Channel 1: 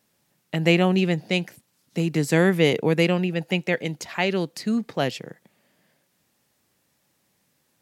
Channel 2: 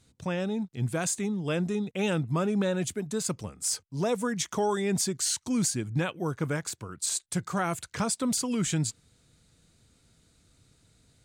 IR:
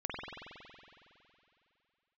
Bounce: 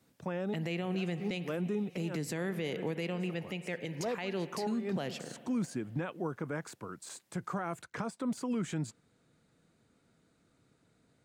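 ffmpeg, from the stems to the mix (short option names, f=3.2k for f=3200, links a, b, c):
-filter_complex "[0:a]highpass=f=62:w=0.5412,highpass=f=62:w=1.3066,acompressor=threshold=-26dB:ratio=1.5,volume=-8dB,asplit=3[a][b][c];[b]volume=-16.5dB[d];[1:a]deesser=0.55,acrossover=split=150 2100:gain=0.141 1 0.224[e][f][g];[e][f][g]amix=inputs=3:normalize=0,volume=-0.5dB[h];[c]apad=whole_len=496064[i];[h][i]sidechaincompress=threshold=-49dB:ratio=8:attack=25:release=109[j];[2:a]atrim=start_sample=2205[k];[d][k]afir=irnorm=-1:irlink=0[l];[a][j][l]amix=inputs=3:normalize=0,alimiter=level_in=2dB:limit=-24dB:level=0:latency=1:release=97,volume=-2dB"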